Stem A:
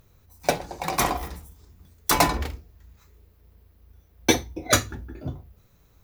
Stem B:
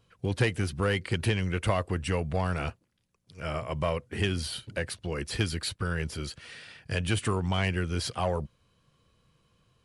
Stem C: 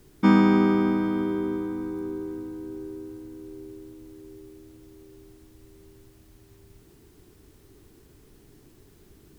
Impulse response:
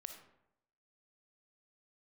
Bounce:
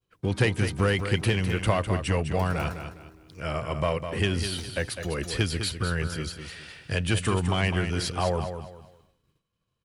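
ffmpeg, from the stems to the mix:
-filter_complex "[0:a]adelay=300,volume=-10.5dB,asplit=2[link_01][link_02];[link_02]volume=-19.5dB[link_03];[1:a]volume=2.5dB,asplit=3[link_04][link_05][link_06];[link_05]volume=-8.5dB[link_07];[2:a]volume=-15.5dB[link_08];[link_06]apad=whole_len=279461[link_09];[link_01][link_09]sidechaincompress=threshold=-36dB:ratio=8:attack=16:release=390[link_10];[link_10][link_08]amix=inputs=2:normalize=0,acompressor=threshold=-48dB:ratio=2.5,volume=0dB[link_11];[link_03][link_07]amix=inputs=2:normalize=0,aecho=0:1:204|408|612|816:1|0.3|0.09|0.027[link_12];[link_04][link_11][link_12]amix=inputs=3:normalize=0,agate=range=-33dB:threshold=-52dB:ratio=3:detection=peak"

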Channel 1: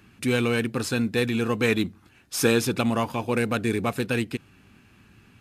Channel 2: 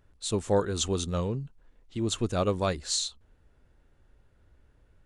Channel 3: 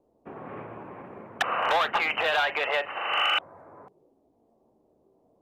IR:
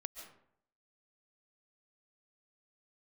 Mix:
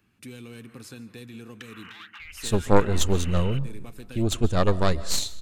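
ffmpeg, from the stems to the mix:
-filter_complex "[0:a]highshelf=frequency=11000:gain=5.5,acrossover=split=340|3000[link_01][link_02][link_03];[link_02]acompressor=threshold=-32dB:ratio=6[link_04];[link_01][link_04][link_03]amix=inputs=3:normalize=0,volume=-15.5dB,asplit=2[link_05][link_06];[link_06]volume=-6.5dB[link_07];[1:a]aeval=exprs='0.211*(cos(1*acos(clip(val(0)/0.211,-1,1)))-cos(1*PI/2))+0.0944*(cos(2*acos(clip(val(0)/0.211,-1,1)))-cos(2*PI/2))+0.0237*(cos(3*acos(clip(val(0)/0.211,-1,1)))-cos(3*PI/2))':channel_layout=same,lowshelf=frequency=170:gain=11,adelay=2200,volume=1.5dB,asplit=2[link_08][link_09];[link_09]volume=-6.5dB[link_10];[2:a]highpass=frequency=1500:width=0.5412,highpass=frequency=1500:width=1.3066,adelay=200,volume=-8dB[link_11];[link_05][link_11]amix=inputs=2:normalize=0,acompressor=threshold=-41dB:ratio=6,volume=0dB[link_12];[3:a]atrim=start_sample=2205[link_13];[link_07][link_10]amix=inputs=2:normalize=0[link_14];[link_14][link_13]afir=irnorm=-1:irlink=0[link_15];[link_08][link_12][link_15]amix=inputs=3:normalize=0"

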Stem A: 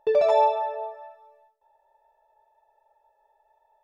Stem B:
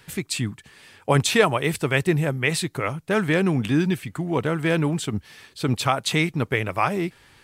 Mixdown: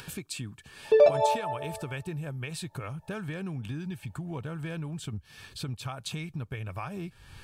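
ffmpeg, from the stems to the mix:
ffmpeg -i stem1.wav -i stem2.wav -filter_complex "[0:a]adelay=850,volume=2.5dB[link_01];[1:a]asubboost=boost=4.5:cutoff=140,acompressor=threshold=-24dB:ratio=6,volume=-9dB,asplit=2[link_02][link_03];[link_03]apad=whole_len=206526[link_04];[link_01][link_04]sidechaincompress=threshold=-44dB:ratio=8:attack=9.5:release=114[link_05];[link_05][link_02]amix=inputs=2:normalize=0,acompressor=mode=upward:threshold=-34dB:ratio=2.5,asuperstop=centerf=2000:order=8:qfactor=7.2" out.wav

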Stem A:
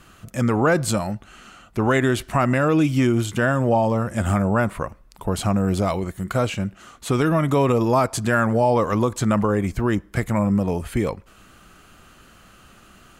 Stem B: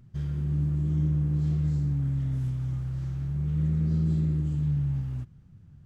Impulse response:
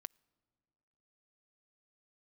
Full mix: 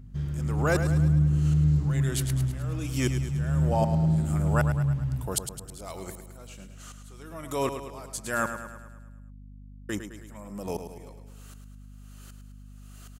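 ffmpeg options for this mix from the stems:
-filter_complex "[0:a]bass=frequency=250:gain=-8,treble=frequency=4000:gain=13,aeval=exprs='val(0)*pow(10,-37*if(lt(mod(-1.3*n/s,1),2*abs(-1.3)/1000),1-mod(-1.3*n/s,1)/(2*abs(-1.3)/1000),(mod(-1.3*n/s,1)-2*abs(-1.3)/1000)/(1-2*abs(-1.3)/1000))/20)':channel_layout=same,volume=-4dB,asplit=3[link_01][link_02][link_03];[link_01]atrim=end=8.56,asetpts=PTS-STARTPTS,afade=type=out:start_time=8.556:duration=0.004:curve=hsin[link_04];[link_02]atrim=start=8.56:end=9.89,asetpts=PTS-STARTPTS,volume=0[link_05];[link_03]atrim=start=9.89,asetpts=PTS-STARTPTS,afade=type=in:duration=0.004:curve=hsin[link_06];[link_04][link_05][link_06]concat=n=3:v=0:a=1,asplit=2[link_07][link_08];[link_08]volume=-9dB[link_09];[1:a]volume=0.5dB,asplit=2[link_10][link_11];[link_11]volume=-8dB[link_12];[link_09][link_12]amix=inputs=2:normalize=0,aecho=0:1:106|212|318|424|530|636|742|848:1|0.55|0.303|0.166|0.0915|0.0503|0.0277|0.0152[link_13];[link_07][link_10][link_13]amix=inputs=3:normalize=0,aeval=exprs='val(0)+0.00562*(sin(2*PI*50*n/s)+sin(2*PI*2*50*n/s)/2+sin(2*PI*3*50*n/s)/3+sin(2*PI*4*50*n/s)/4+sin(2*PI*5*50*n/s)/5)':channel_layout=same"

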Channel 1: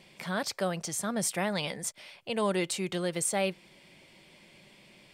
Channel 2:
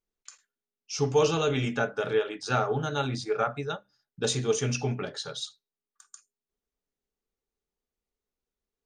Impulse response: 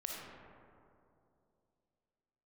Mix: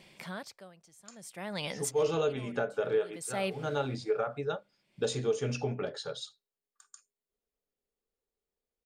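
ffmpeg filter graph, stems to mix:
-filter_complex "[0:a]aeval=exprs='val(0)*pow(10,-25*(0.5-0.5*cos(2*PI*0.55*n/s))/20)':channel_layout=same,volume=-0.5dB,asplit=2[link_01][link_02];[1:a]equalizer=frequency=520:width=1.7:gain=7.5,bandreject=frequency=6000:width=11,adynamicequalizer=threshold=0.00891:dfrequency=2300:dqfactor=0.7:tfrequency=2300:tqfactor=0.7:attack=5:release=100:ratio=0.375:range=2:mode=cutabove:tftype=highshelf,adelay=800,volume=-4dB[link_03];[link_02]apad=whole_len=425758[link_04];[link_03][link_04]sidechaincompress=threshold=-49dB:ratio=8:attack=16:release=132[link_05];[link_01][link_05]amix=inputs=2:normalize=0,alimiter=limit=-20dB:level=0:latency=1:release=247"

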